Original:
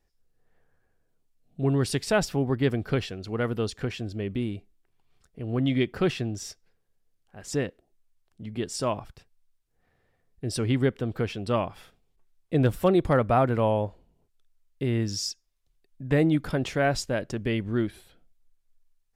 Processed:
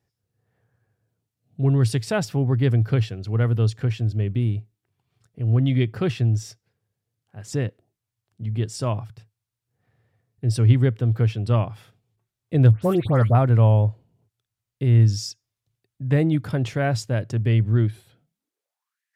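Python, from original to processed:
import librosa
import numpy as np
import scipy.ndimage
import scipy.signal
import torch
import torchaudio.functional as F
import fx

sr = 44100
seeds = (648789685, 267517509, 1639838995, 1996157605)

y = fx.dispersion(x, sr, late='highs', ms=117.0, hz=2400.0, at=(12.71, 13.35))
y = fx.filter_sweep_highpass(y, sr, from_hz=110.0, to_hz=1800.0, start_s=18.19, end_s=19.01, q=6.9)
y = y * librosa.db_to_amplitude(-1.0)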